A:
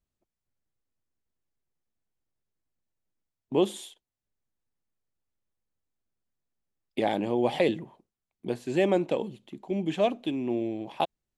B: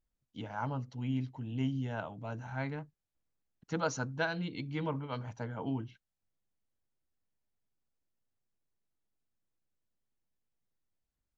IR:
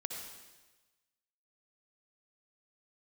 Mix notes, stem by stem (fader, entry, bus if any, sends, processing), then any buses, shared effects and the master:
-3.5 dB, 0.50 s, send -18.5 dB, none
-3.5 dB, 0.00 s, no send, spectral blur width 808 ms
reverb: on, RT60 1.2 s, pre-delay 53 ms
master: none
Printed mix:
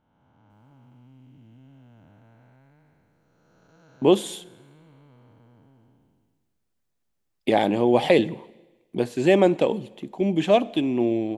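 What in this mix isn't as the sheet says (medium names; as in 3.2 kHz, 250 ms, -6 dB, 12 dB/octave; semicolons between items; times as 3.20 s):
stem A -3.5 dB -> +6.0 dB; stem B -3.5 dB -> -13.0 dB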